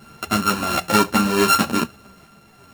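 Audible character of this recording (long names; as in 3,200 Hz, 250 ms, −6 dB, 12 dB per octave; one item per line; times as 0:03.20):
a buzz of ramps at a fixed pitch in blocks of 32 samples
sample-and-hold tremolo 3.1 Hz
a shimmering, thickened sound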